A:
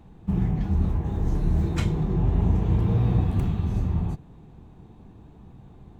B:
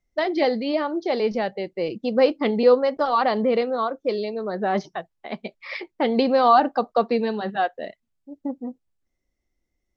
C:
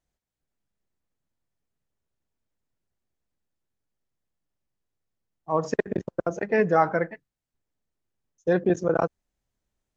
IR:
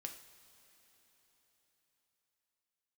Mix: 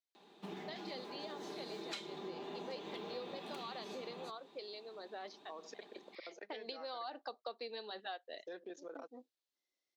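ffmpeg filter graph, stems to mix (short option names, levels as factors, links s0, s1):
-filter_complex "[0:a]aecho=1:1:5:0.4,adelay=150,volume=0.531[s0];[1:a]adelay=500,volume=0.237,afade=t=in:st=6.29:d=0.26:silence=0.354813[s1];[2:a]alimiter=limit=0.119:level=0:latency=1:release=260,volume=0.126,asplit=2[s2][s3];[s3]apad=whole_len=461637[s4];[s1][s4]sidechaincompress=threshold=0.00355:ratio=8:attack=8.8:release=345[s5];[s0][s5][s2]amix=inputs=3:normalize=0,highpass=f=320:w=0.5412,highpass=f=320:w=1.3066,equalizer=f=4000:w=1.2:g=14.5,acompressor=threshold=0.00708:ratio=4"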